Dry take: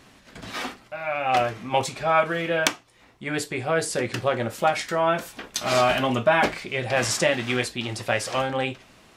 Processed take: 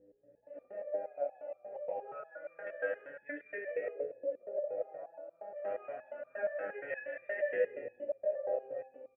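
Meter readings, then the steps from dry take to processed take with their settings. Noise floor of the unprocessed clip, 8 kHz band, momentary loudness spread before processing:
−54 dBFS, below −40 dB, 12 LU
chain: echo with shifted repeats 89 ms, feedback 53%, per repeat −38 Hz, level −13.5 dB
mains hum 60 Hz, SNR 15 dB
noise reduction from a noise print of the clip's start 8 dB
auto-filter low-pass saw up 0.27 Hz 490–2,000 Hz
Butterworth band-reject 5,300 Hz, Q 0.66
high-shelf EQ 6,100 Hz −9.5 dB
comb and all-pass reverb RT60 0.9 s, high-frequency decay 0.75×, pre-delay 115 ms, DRR −2.5 dB
downward compressor 5 to 1, threshold −26 dBFS, peak gain reduction 17.5 dB
formant filter e
step-sequenced resonator 8.5 Hz 100–1,200 Hz
level +12.5 dB

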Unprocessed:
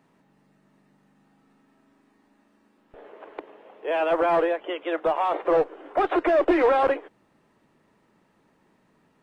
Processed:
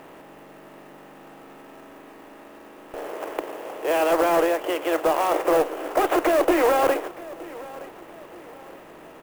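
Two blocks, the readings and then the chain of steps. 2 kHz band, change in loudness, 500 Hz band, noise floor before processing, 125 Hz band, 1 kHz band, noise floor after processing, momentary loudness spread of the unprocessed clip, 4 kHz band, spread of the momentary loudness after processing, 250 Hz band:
+2.5 dB, +1.0 dB, +1.5 dB, −65 dBFS, +2.5 dB, +2.0 dB, −46 dBFS, 18 LU, +6.0 dB, 18 LU, +2.0 dB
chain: compressor on every frequency bin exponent 0.6
parametric band 3,000 Hz +3.5 dB 0.54 octaves
repeating echo 920 ms, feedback 43%, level −19 dB
converter with an unsteady clock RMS 0.024 ms
level −1.5 dB

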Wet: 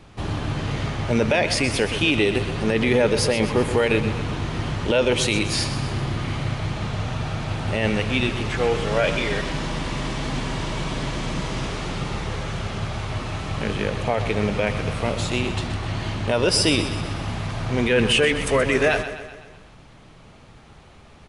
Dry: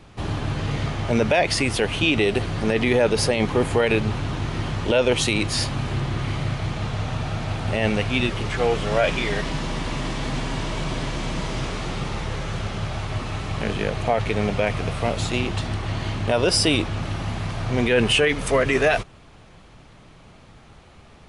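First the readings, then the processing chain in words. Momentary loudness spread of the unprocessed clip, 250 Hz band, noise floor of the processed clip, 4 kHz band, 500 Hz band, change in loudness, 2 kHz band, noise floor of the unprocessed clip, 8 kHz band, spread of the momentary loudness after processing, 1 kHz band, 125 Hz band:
9 LU, +0.5 dB, −47 dBFS, +0.5 dB, 0.0 dB, 0.0 dB, +0.5 dB, −48 dBFS, +0.5 dB, 10 LU, −1.0 dB, 0.0 dB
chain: dynamic equaliser 700 Hz, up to −5 dB, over −40 dBFS, Q 6.6
repeating echo 126 ms, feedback 55%, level −11 dB

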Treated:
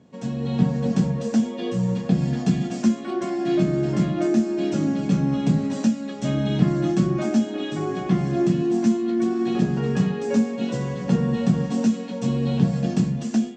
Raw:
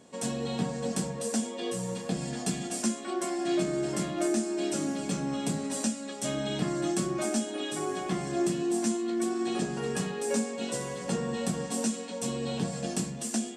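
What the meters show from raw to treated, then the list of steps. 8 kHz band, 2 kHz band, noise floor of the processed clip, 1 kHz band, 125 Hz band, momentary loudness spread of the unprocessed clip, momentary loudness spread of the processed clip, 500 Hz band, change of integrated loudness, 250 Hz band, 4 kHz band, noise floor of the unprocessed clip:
−8.0 dB, +2.5 dB, −33 dBFS, +3.0 dB, +14.0 dB, 5 LU, 5 LU, +5.0 dB, +8.5 dB, +10.0 dB, 0.0 dB, −39 dBFS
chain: high-pass filter 83 Hz
automatic gain control gain up to 6.5 dB
Butterworth low-pass 7,100 Hz 48 dB per octave
bass and treble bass +14 dB, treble −7 dB
level −3.5 dB

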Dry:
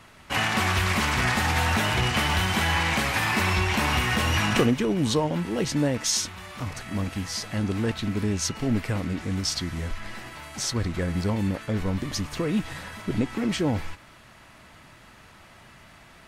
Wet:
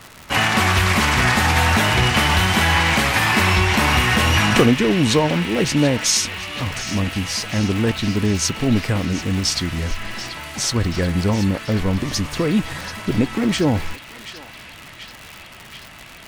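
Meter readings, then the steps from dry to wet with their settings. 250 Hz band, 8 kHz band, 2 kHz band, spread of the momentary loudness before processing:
+7.0 dB, +7.0 dB, +7.5 dB, 9 LU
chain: surface crackle 130 per second −33 dBFS
feedback echo with a band-pass in the loop 734 ms, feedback 84%, band-pass 2,800 Hz, level −10.5 dB
level +7 dB

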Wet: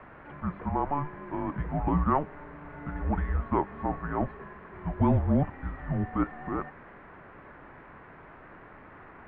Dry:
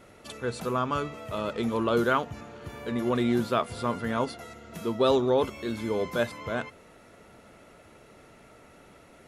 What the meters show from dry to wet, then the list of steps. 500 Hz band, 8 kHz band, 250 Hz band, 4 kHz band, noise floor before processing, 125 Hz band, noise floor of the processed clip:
−8.5 dB, below −30 dB, −0.5 dB, below −20 dB, −54 dBFS, +6.0 dB, −50 dBFS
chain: background noise white −40 dBFS
single-sideband voice off tune −290 Hz 280–2,100 Hz

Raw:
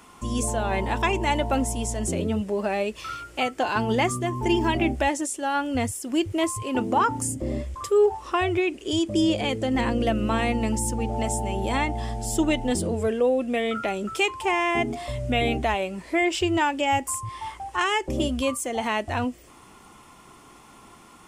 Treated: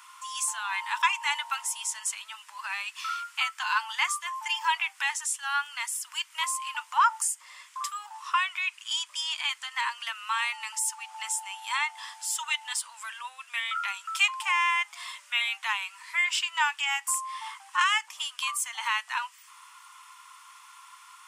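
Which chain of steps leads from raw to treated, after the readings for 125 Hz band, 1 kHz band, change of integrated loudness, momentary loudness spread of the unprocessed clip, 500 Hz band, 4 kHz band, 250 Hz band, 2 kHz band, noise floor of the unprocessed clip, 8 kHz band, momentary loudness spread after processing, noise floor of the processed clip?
below −40 dB, −3.0 dB, −3.5 dB, 6 LU, below −35 dB, +2.0 dB, below −40 dB, +1.5 dB, −50 dBFS, +1.5 dB, 10 LU, −55 dBFS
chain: Chebyshev high-pass filter 950 Hz, order 6
level +2 dB

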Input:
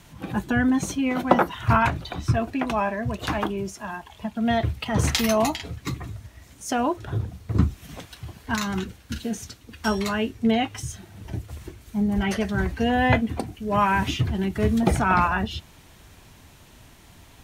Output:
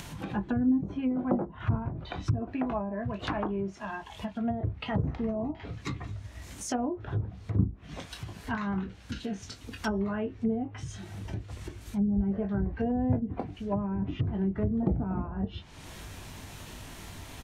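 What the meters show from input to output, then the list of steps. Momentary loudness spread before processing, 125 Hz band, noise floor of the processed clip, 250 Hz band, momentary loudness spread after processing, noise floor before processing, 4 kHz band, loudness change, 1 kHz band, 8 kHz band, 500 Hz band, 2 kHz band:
15 LU, −5.0 dB, −48 dBFS, −5.0 dB, 15 LU, −51 dBFS, −13.0 dB, −7.5 dB, −13.5 dB, −11.5 dB, −8.0 dB, −14.0 dB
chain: ambience of single reflections 20 ms −7.5 dB, 31 ms −14 dB
treble cut that deepens with the level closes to 370 Hz, closed at −17.5 dBFS
upward compression, threshold −27 dBFS
level −5.5 dB

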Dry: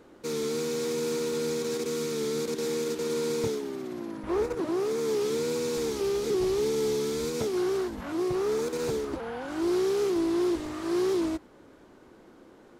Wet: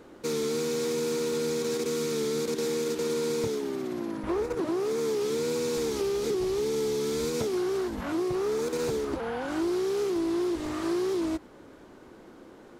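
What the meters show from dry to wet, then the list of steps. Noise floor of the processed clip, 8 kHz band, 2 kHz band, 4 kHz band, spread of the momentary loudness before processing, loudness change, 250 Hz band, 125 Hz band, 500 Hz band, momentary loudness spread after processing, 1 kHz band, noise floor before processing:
−50 dBFS, +0.5 dB, +1.0 dB, +0.5 dB, 6 LU, 0.0 dB, 0.0 dB, +0.5 dB, 0.0 dB, 3 LU, +0.5 dB, −54 dBFS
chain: downward compressor, threshold −29 dBFS, peak gain reduction 6 dB
level +3.5 dB

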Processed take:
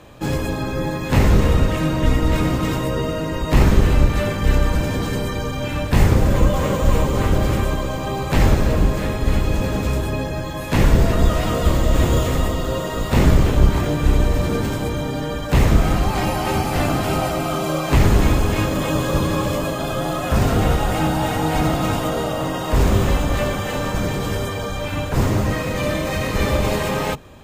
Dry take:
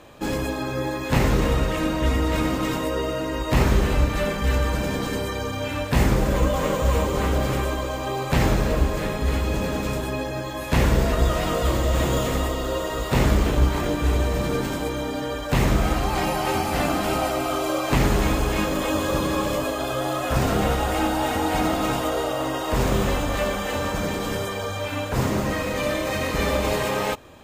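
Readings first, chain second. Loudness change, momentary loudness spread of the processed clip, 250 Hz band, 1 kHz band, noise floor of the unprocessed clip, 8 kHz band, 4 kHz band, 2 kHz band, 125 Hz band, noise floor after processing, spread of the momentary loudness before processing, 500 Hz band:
+3.5 dB, 8 LU, +3.5 dB, +1.5 dB, −29 dBFS, +1.5 dB, +1.5 dB, +1.5 dB, +6.0 dB, −26 dBFS, 6 LU, +2.0 dB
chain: sub-octave generator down 1 octave, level +3 dB
level +1.5 dB

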